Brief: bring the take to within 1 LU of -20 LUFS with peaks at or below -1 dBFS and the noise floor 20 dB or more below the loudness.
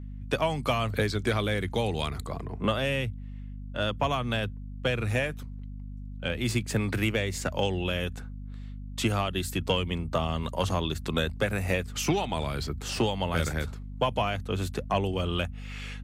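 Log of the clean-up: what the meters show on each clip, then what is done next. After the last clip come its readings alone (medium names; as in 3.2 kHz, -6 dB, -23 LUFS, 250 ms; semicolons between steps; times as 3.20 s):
hum 50 Hz; highest harmonic 250 Hz; hum level -36 dBFS; loudness -29.5 LUFS; peak level -13.0 dBFS; loudness target -20.0 LUFS
-> hum notches 50/100/150/200/250 Hz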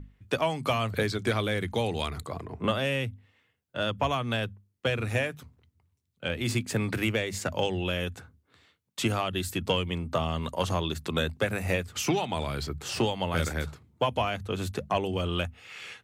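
hum not found; loudness -30.0 LUFS; peak level -13.5 dBFS; loudness target -20.0 LUFS
-> trim +10 dB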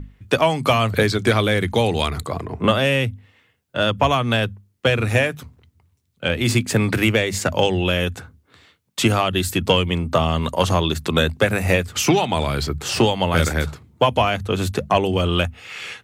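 loudness -20.0 LUFS; peak level -3.5 dBFS; noise floor -65 dBFS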